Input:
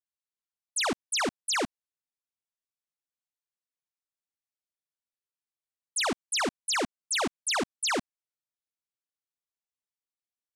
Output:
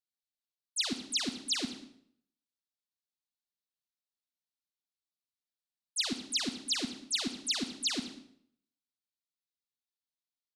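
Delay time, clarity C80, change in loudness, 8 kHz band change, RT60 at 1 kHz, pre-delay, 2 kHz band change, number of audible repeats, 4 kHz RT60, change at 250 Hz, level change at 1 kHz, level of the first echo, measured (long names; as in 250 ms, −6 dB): 194 ms, 11.5 dB, −3.5 dB, −5.5 dB, 0.60 s, 33 ms, −10.5 dB, 1, 0.55 s, −2.5 dB, −17.0 dB, −20.5 dB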